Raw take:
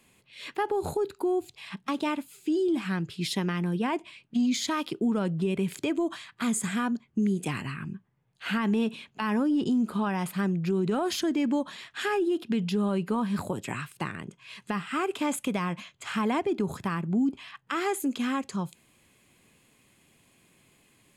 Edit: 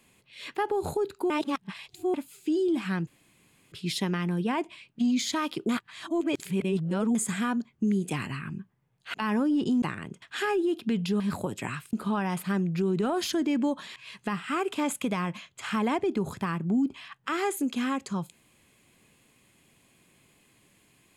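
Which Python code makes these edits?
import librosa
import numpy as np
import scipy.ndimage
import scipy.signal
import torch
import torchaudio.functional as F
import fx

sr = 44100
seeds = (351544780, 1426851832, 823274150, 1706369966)

y = fx.edit(x, sr, fx.reverse_span(start_s=1.3, length_s=0.84),
    fx.insert_room_tone(at_s=3.07, length_s=0.65),
    fx.reverse_span(start_s=5.04, length_s=1.46),
    fx.cut(start_s=8.49, length_s=0.65),
    fx.swap(start_s=9.82, length_s=2.03, other_s=13.99, other_length_s=0.4),
    fx.cut(start_s=12.83, length_s=0.43), tone=tone)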